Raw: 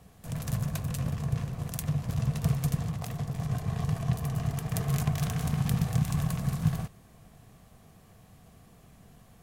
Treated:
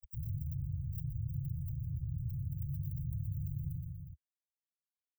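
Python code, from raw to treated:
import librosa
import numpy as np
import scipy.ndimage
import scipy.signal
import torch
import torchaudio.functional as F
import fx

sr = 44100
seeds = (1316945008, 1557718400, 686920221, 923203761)

p1 = fx.rider(x, sr, range_db=3, speed_s=0.5)
p2 = x + (p1 * librosa.db_to_amplitude(3.0))
p3 = scipy.signal.sosfilt(scipy.signal.butter(4, 120.0, 'highpass', fs=sr, output='sos'), p2)
p4 = np.sign(p3) * np.maximum(np.abs(p3) - 10.0 ** (-36.5 / 20.0), 0.0)
p5 = p4 + fx.echo_feedback(p4, sr, ms=217, feedback_pct=32, wet_db=-12.0, dry=0)
p6 = fx.stretch_vocoder(p5, sr, factor=0.55)
p7 = scipy.signal.sosfilt(scipy.signal.cheby2(4, 70, [350.0, 8900.0], 'bandstop', fs=sr, output='sos'), p6)
p8 = fx.env_flatten(p7, sr, amount_pct=70)
y = p8 * librosa.db_to_amplitude(1.5)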